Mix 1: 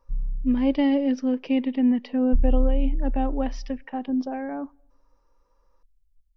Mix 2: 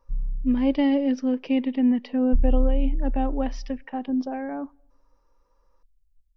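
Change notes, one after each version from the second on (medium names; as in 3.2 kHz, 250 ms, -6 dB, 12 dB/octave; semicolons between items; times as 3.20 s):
no change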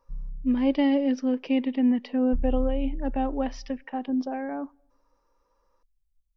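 master: add bass shelf 120 Hz -8.5 dB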